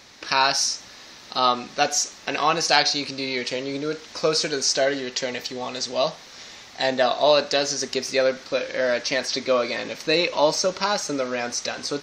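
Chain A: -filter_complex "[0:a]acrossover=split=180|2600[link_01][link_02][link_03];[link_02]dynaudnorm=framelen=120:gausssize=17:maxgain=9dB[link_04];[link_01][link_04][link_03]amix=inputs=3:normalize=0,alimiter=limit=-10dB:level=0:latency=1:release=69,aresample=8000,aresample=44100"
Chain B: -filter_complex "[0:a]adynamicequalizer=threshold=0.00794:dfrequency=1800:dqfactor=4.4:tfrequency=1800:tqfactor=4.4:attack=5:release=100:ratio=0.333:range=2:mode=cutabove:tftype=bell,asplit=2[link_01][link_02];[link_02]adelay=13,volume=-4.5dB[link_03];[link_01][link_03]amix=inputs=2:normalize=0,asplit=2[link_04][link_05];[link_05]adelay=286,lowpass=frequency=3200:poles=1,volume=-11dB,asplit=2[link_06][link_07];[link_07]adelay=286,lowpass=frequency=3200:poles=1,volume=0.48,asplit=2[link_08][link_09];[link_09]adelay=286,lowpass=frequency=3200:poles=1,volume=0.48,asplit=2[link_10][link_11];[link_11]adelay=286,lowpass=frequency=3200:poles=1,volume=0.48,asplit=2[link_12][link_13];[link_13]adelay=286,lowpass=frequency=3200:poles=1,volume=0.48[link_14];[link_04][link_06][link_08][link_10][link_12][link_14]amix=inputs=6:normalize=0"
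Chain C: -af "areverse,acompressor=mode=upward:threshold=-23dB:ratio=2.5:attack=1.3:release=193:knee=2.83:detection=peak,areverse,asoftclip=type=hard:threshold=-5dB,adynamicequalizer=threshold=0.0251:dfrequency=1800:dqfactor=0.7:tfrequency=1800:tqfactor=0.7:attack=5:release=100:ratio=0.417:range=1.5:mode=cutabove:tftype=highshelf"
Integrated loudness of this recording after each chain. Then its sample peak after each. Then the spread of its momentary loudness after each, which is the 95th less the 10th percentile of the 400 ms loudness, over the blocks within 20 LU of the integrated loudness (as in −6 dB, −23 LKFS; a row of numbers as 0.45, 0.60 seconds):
−23.0, −21.5, −23.5 LKFS; −9.5, −1.0, −5.0 dBFS; 8, 9, 9 LU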